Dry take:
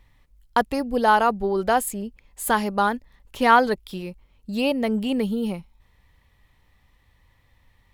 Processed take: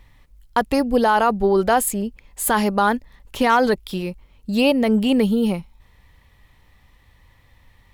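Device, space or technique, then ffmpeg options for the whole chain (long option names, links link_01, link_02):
clipper into limiter: -af "asoftclip=type=hard:threshold=-7dB,alimiter=limit=-14.5dB:level=0:latency=1:release=35,volume=6.5dB"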